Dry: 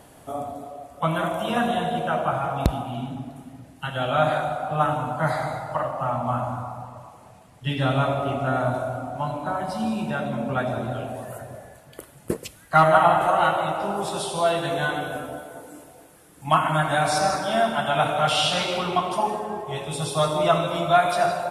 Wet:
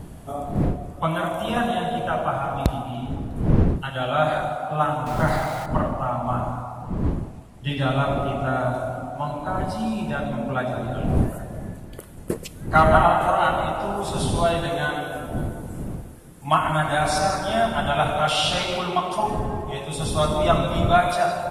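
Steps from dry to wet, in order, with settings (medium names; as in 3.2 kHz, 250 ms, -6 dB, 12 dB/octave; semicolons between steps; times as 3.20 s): 5.06–5.66 s: jump at every zero crossing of -31 dBFS; wind noise 190 Hz -29 dBFS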